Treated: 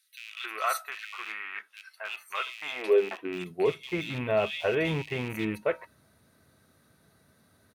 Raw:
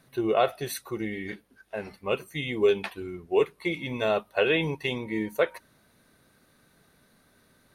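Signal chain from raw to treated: rattle on loud lows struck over -38 dBFS, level -23 dBFS; feedback comb 650 Hz, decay 0.16 s, harmonics all, mix 60%; bands offset in time highs, lows 270 ms, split 2.7 kHz; high-pass sweep 1.3 kHz -> 83 Hz, 2.41–3.89 s; in parallel at -1.5 dB: peak limiter -24 dBFS, peak gain reduction 7 dB

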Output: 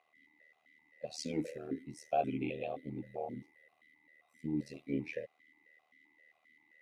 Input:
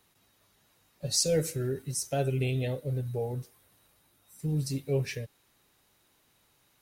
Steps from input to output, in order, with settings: whistle 2 kHz -57 dBFS; AM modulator 77 Hz, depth 85%; stepped vowel filter 7.6 Hz; trim +10 dB

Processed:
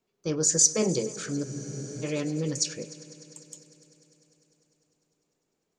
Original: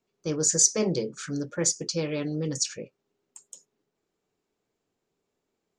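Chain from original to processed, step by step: multi-head delay 100 ms, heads all three, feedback 70%, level -23.5 dB; spectral freeze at 1.47 s, 0.57 s

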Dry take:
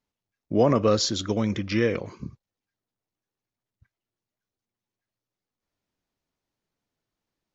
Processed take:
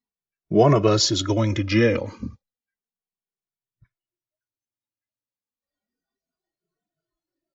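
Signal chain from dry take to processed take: spectral noise reduction 17 dB; endless flanger 2.2 ms -0.32 Hz; trim +8 dB

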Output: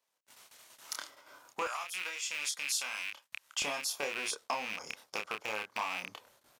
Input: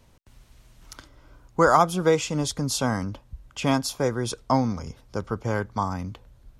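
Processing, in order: rattle on loud lows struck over -30 dBFS, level -17 dBFS; treble shelf 6.2 kHz +6 dB; compression 6:1, threshold -35 dBFS, peak gain reduction 21 dB; waveshaping leveller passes 1; doubling 28 ms -4.5 dB; gate -47 dBFS, range -22 dB; high-pass 650 Hz 12 dB/octave, from 1.67 s 1.4 kHz, from 3.62 s 590 Hz

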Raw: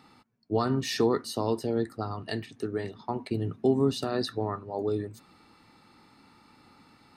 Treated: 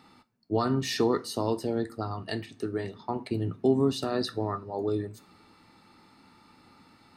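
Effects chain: two-slope reverb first 0.29 s, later 2 s, from -27 dB, DRR 12 dB

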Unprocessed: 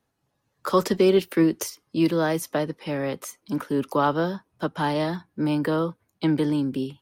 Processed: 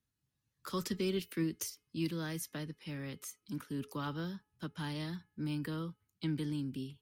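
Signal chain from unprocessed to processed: amplifier tone stack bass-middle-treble 6-0-2; de-hum 424.6 Hz, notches 7; trim +6.5 dB

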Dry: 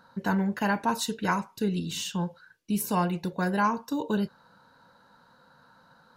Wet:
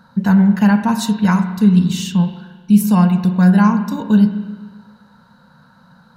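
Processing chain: resonant low shelf 260 Hz +6 dB, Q 3; spring tank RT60 1.4 s, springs 33/44 ms, chirp 20 ms, DRR 8 dB; trim +6 dB

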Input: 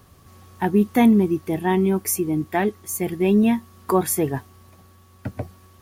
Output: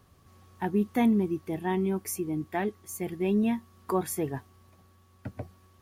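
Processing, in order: treble shelf 8 kHz -4.5 dB; trim -8.5 dB

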